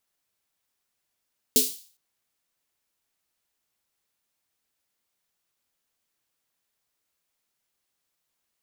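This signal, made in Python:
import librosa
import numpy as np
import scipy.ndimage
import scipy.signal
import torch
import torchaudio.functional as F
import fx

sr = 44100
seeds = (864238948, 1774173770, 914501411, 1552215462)

y = fx.drum_snare(sr, seeds[0], length_s=0.41, hz=260.0, second_hz=430.0, noise_db=6.0, noise_from_hz=3400.0, decay_s=0.24, noise_decay_s=0.44)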